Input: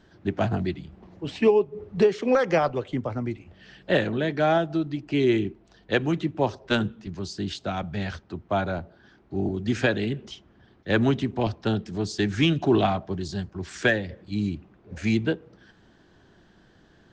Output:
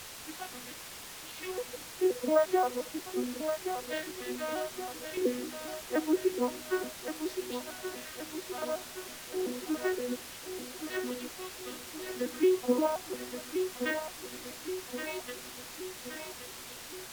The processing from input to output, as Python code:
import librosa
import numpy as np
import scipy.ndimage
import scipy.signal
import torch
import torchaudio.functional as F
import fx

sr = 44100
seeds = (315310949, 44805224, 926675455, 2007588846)

p1 = fx.vocoder_arp(x, sr, chord='major triad', root=59, every_ms=175)
p2 = fx.noise_reduce_blind(p1, sr, reduce_db=8)
p3 = fx.filter_lfo_bandpass(p2, sr, shape='square', hz=0.29, low_hz=840.0, high_hz=3300.0, q=0.97)
p4 = p3 + fx.echo_feedback(p3, sr, ms=1123, feedback_pct=54, wet_db=-8.0, dry=0)
p5 = fx.dmg_noise_colour(p4, sr, seeds[0], colour='violet', level_db=-46.0)
y = np.repeat(p5[::2], 2)[:len(p5)]